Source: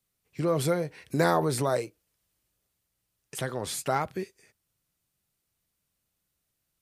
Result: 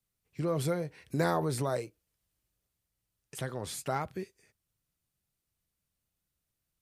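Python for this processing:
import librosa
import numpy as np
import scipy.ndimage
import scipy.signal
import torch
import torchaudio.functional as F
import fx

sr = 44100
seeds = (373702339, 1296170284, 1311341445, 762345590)

y = fx.low_shelf(x, sr, hz=140.0, db=7.0)
y = y * librosa.db_to_amplitude(-6.0)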